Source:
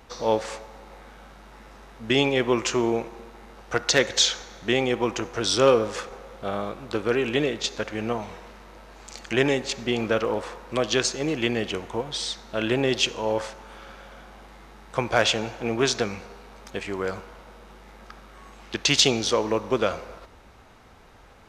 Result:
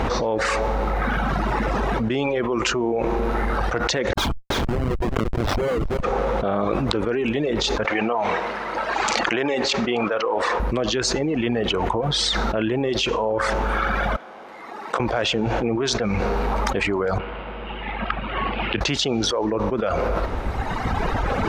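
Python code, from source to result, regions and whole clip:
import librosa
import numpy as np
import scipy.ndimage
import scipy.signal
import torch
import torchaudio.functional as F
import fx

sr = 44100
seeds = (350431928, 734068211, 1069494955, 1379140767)

y = fx.chain(x, sr, fx.peak_eq(hz=1100.0, db=7.0, octaves=0.49),
    fx.schmitt(flips_db=-20.5),
    fx.echo_single(ms=328, db=-18.0), at=(4.13, 6.03))
y = fx.chain(y, sr, fx.highpass(hz=710.0, slope=6),
    fx.air_absorb(metres=53.0), at=(7.85, 10.6))
y = fx.chain(y, sr, fx.highpass(hz=350.0, slope=12),
    fx.level_steps(step_db=21),
    fx.doubler(ms=32.0, db=-12), at=(14.16, 15.0))
y = fx.chain(y, sr, fx.resample_bad(factor=4, down='none', up='filtered'),
    fx.ladder_lowpass(hz=3200.0, resonance_pct=60),
    fx.band_squash(depth_pct=40), at=(17.18, 18.81))
y = fx.lowpass(y, sr, hz=1300.0, slope=6)
y = fx.dereverb_blind(y, sr, rt60_s=1.8)
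y = fx.env_flatten(y, sr, amount_pct=100)
y = y * librosa.db_to_amplitude(-4.0)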